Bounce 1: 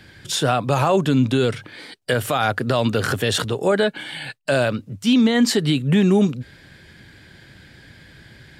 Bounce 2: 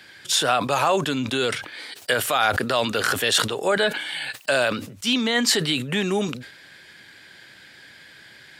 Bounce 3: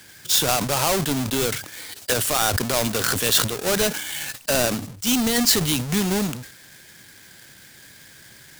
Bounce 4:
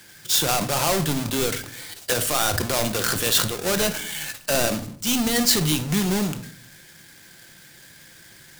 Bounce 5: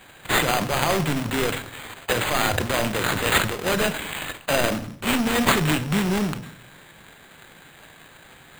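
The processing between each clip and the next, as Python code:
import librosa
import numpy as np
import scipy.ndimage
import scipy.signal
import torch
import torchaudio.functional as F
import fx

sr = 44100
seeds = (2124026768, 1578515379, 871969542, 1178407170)

y1 = fx.highpass(x, sr, hz=960.0, slope=6)
y1 = fx.sustainer(y1, sr, db_per_s=83.0)
y1 = y1 * librosa.db_to_amplitude(3.0)
y2 = fx.halfwave_hold(y1, sr)
y2 = fx.bass_treble(y2, sr, bass_db=7, treble_db=9)
y2 = y2 * librosa.db_to_amplitude(-7.0)
y3 = fx.room_shoebox(y2, sr, seeds[0], volume_m3=620.0, walls='furnished', distance_m=0.83)
y3 = y3 * librosa.db_to_amplitude(-1.5)
y4 = np.repeat(y3[::8], 8)[:len(y3)]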